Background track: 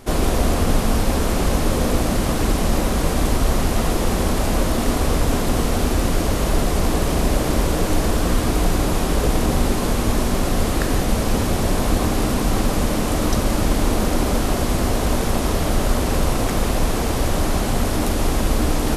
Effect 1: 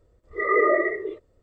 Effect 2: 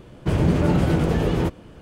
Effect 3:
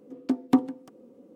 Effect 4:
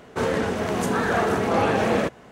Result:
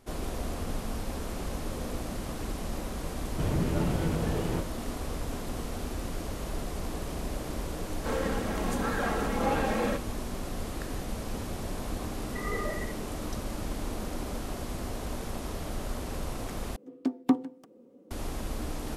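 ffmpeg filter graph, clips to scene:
ffmpeg -i bed.wav -i cue0.wav -i cue1.wav -i cue2.wav -i cue3.wav -filter_complex "[0:a]volume=-16dB[link_01];[4:a]aecho=1:1:3.7:0.49[link_02];[1:a]equalizer=frequency=2300:width_type=o:width=0.77:gain=3.5[link_03];[link_01]asplit=2[link_04][link_05];[link_04]atrim=end=16.764[link_06];[3:a]atrim=end=1.35,asetpts=PTS-STARTPTS,volume=-3.5dB[link_07];[link_05]atrim=start=18.106[link_08];[2:a]atrim=end=1.81,asetpts=PTS-STARTPTS,volume=-10dB,afade=type=in:duration=0.004:curve=hsin,afade=type=out:start_time=1.806:duration=0.004:curve=hsin,adelay=3120[link_09];[link_02]atrim=end=2.31,asetpts=PTS-STARTPTS,volume=-9dB,afade=type=in:duration=0.004:curve=hsin,afade=type=out:start_time=2.306:duration=0.004:curve=hsin,adelay=7890[link_10];[link_03]atrim=end=1.42,asetpts=PTS-STARTPTS,volume=-16.5dB,afade=type=in:duration=0.004:curve=hsin,afade=type=out:start_time=1.416:duration=0.004:curve=hsin,adelay=11960[link_11];[link_06][link_07]acrossfade=duration=0.004:curve1=hsin:curve2=hsin[link_12];[link_12][link_08]acrossfade=duration=0.004:curve1=hsin:curve2=hsin[link_13];[link_13][link_09][link_10][link_11]amix=inputs=4:normalize=0" out.wav

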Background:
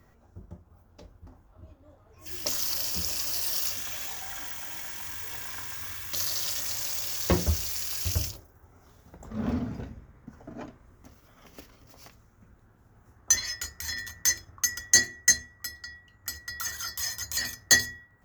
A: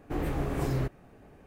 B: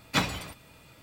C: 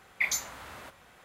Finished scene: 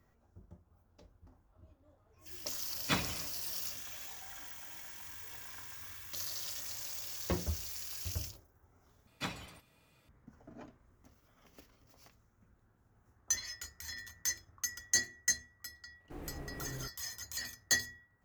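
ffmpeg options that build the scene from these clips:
ffmpeg -i bed.wav -i cue0.wav -i cue1.wav -filter_complex "[2:a]asplit=2[link_01][link_02];[0:a]volume=-10.5dB[link_03];[link_01]bandreject=frequency=840:width=9.5[link_04];[1:a]acrusher=bits=7:mix=0:aa=0.5[link_05];[link_03]asplit=2[link_06][link_07];[link_06]atrim=end=9.074[link_08];[link_02]atrim=end=1.02,asetpts=PTS-STARTPTS,volume=-13.5dB[link_09];[link_07]atrim=start=10.086[link_10];[link_04]atrim=end=1.02,asetpts=PTS-STARTPTS,volume=-6.5dB,afade=type=in:duration=0.004:curve=hsin,afade=type=out:start_time=1.016:duration=0.004:curve=hsin,adelay=2750[link_11];[link_05]atrim=end=1.46,asetpts=PTS-STARTPTS,volume=-15dB,afade=type=in:duration=0.004:curve=hsin,afade=type=out:start_time=1.456:duration=0.004:curve=hsin,adelay=16000[link_12];[link_08][link_09]acrossfade=duration=0.004:curve1=hsin:curve2=hsin[link_13];[link_13][link_10]acrossfade=duration=0.004:curve1=hsin:curve2=hsin[link_14];[link_14][link_11][link_12]amix=inputs=3:normalize=0" out.wav

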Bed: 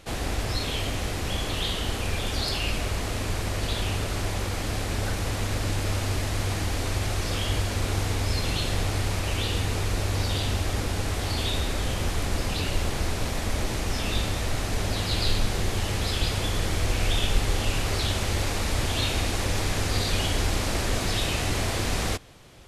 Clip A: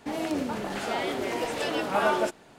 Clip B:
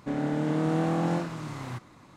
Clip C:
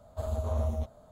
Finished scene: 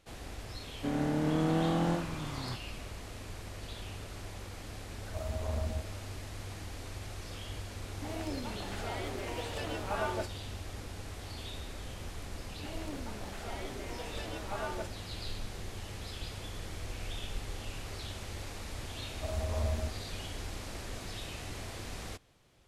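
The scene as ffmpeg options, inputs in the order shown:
ffmpeg -i bed.wav -i cue0.wav -i cue1.wav -i cue2.wav -filter_complex "[3:a]asplit=2[link_01][link_02];[1:a]asplit=2[link_03][link_04];[0:a]volume=-15.5dB[link_05];[link_01]aeval=exprs='if(lt(val(0),0),0.708*val(0),val(0))':channel_layout=same[link_06];[2:a]atrim=end=2.16,asetpts=PTS-STARTPTS,volume=-3dB,afade=type=in:duration=0.004:curve=hsin,afade=type=out:start_time=2.156:duration=0.004:curve=hsin,adelay=770[link_07];[link_06]atrim=end=1.11,asetpts=PTS-STARTPTS,volume=-3.5dB,afade=type=in:duration=0.004:curve=hsin,afade=type=out:start_time=1.106:duration=0.004:curve=hsin,adelay=219177S[link_08];[link_03]atrim=end=2.58,asetpts=PTS-STARTPTS,volume=-10dB,afade=type=in:duration=0.004:curve=hsin,afade=type=out:start_time=2.576:duration=0.004:curve=hsin,adelay=7960[link_09];[link_04]atrim=end=2.58,asetpts=PTS-STARTPTS,volume=-14dB,afade=type=in:duration=0.004:curve=hsin,afade=type=out:start_time=2.576:duration=0.004:curve=hsin,adelay=12570[link_10];[link_02]atrim=end=1.11,asetpts=PTS-STARTPTS,volume=-3dB,afade=type=in:duration=0.004:curve=hsin,afade=type=out:start_time=1.106:duration=0.004:curve=hsin,adelay=19050[link_11];[link_05][link_07][link_08][link_09][link_10][link_11]amix=inputs=6:normalize=0" out.wav

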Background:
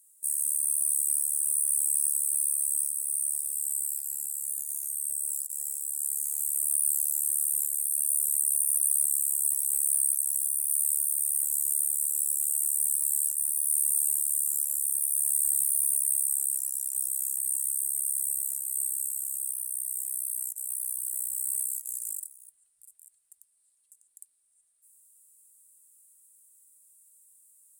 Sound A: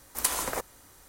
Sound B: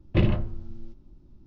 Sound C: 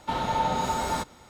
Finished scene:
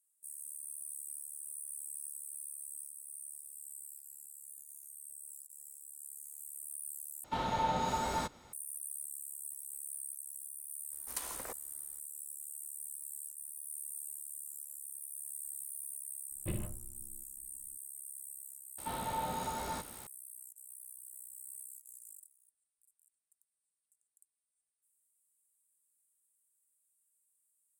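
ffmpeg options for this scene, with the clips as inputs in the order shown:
ffmpeg -i bed.wav -i cue0.wav -i cue1.wav -i cue2.wav -filter_complex "[3:a]asplit=2[link_01][link_02];[0:a]volume=-18dB[link_03];[link_02]aeval=exprs='val(0)+0.5*0.0133*sgn(val(0))':channel_layout=same[link_04];[link_03]asplit=2[link_05][link_06];[link_05]atrim=end=7.244[link_07];[link_01]atrim=end=1.29,asetpts=PTS-STARTPTS,volume=-6.5dB[link_08];[link_06]atrim=start=8.526[link_09];[1:a]atrim=end=1.08,asetpts=PTS-STARTPTS,volume=-13.5dB,afade=type=in:duration=0.004:curve=hsin,afade=type=out:start_time=1.076:duration=0.004:curve=hsin,adelay=10920[link_10];[2:a]atrim=end=1.46,asetpts=PTS-STARTPTS,volume=-17dB,afade=type=in:duration=0.004:curve=hsin,afade=type=out:start_time=1.456:duration=0.004:curve=hsin,adelay=16310[link_11];[link_04]atrim=end=1.29,asetpts=PTS-STARTPTS,volume=-12dB,afade=type=in:duration=0.004:curve=hsin,afade=type=out:start_time=1.286:duration=0.004:curve=hsin,adelay=18780[link_12];[link_07][link_08]acrossfade=duration=0.004:curve1=hsin:curve2=hsin[link_13];[link_13][link_09]acrossfade=duration=0.004:curve1=hsin:curve2=hsin[link_14];[link_14][link_10][link_11][link_12]amix=inputs=4:normalize=0" out.wav

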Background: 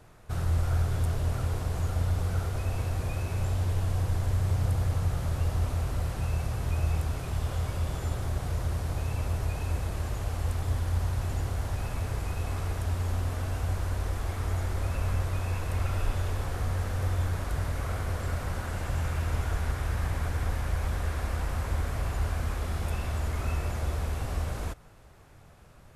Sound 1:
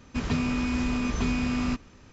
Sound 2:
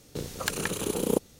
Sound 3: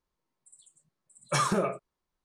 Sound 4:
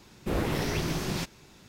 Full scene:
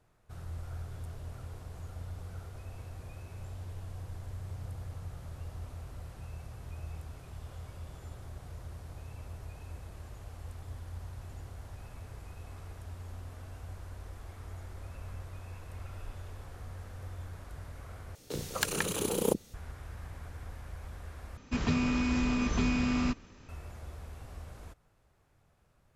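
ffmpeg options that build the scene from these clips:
ffmpeg -i bed.wav -i cue0.wav -i cue1.wav -filter_complex "[0:a]volume=-14.5dB[link_01];[2:a]acrossover=split=270[link_02][link_03];[link_02]adelay=30[link_04];[link_04][link_03]amix=inputs=2:normalize=0[link_05];[link_01]asplit=3[link_06][link_07][link_08];[link_06]atrim=end=18.154[link_09];[link_05]atrim=end=1.39,asetpts=PTS-STARTPTS,volume=-1dB[link_10];[link_07]atrim=start=19.536:end=21.374[link_11];[1:a]atrim=end=2.12,asetpts=PTS-STARTPTS,volume=-2dB[link_12];[link_08]atrim=start=23.486[link_13];[link_09][link_10]acrossfade=duration=0.004:curve1=hsin:curve2=hsin[link_14];[link_14][link_11]acrossfade=duration=0.004:curve1=hsin:curve2=hsin[link_15];[link_15][link_12]acrossfade=duration=0.004:curve1=hsin:curve2=hsin[link_16];[link_16][link_13]acrossfade=duration=0.004:curve1=hsin:curve2=hsin" out.wav

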